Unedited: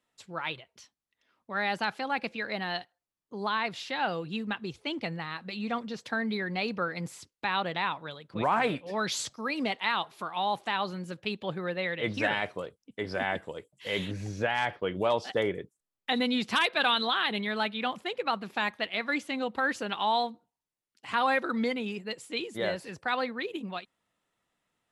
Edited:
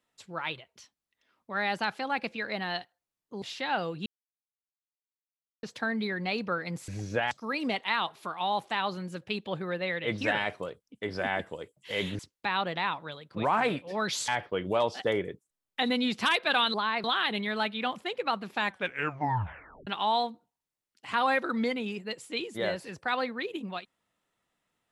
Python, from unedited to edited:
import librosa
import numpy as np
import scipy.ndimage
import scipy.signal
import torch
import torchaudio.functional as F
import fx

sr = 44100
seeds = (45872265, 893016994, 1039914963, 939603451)

y = fx.edit(x, sr, fx.move(start_s=3.42, length_s=0.3, to_s=17.04),
    fx.silence(start_s=4.36, length_s=1.57),
    fx.swap(start_s=7.18, length_s=2.09, other_s=14.15, other_length_s=0.43),
    fx.tape_stop(start_s=18.65, length_s=1.22), tone=tone)